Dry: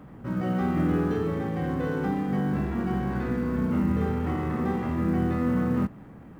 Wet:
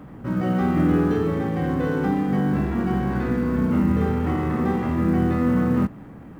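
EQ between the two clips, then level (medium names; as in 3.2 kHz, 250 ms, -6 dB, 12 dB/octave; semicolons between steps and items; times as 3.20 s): peaking EQ 290 Hz +2.5 dB 0.24 oct; +4.5 dB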